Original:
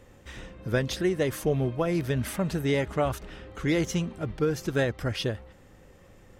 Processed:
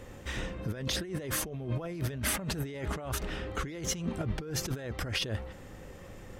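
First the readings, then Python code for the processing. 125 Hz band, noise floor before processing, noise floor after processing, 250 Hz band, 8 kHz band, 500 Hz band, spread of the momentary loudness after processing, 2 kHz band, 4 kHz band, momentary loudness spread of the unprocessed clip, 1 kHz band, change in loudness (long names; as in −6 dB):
−5.5 dB, −54 dBFS, −48 dBFS, −8.5 dB, +4.5 dB, −11.5 dB, 8 LU, −4.0 dB, +0.5 dB, 13 LU, −5.5 dB, −6.5 dB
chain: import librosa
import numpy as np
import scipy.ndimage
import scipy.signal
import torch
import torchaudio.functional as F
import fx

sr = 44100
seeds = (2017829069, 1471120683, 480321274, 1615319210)

y = fx.over_compress(x, sr, threshold_db=-35.0, ratio=-1.0)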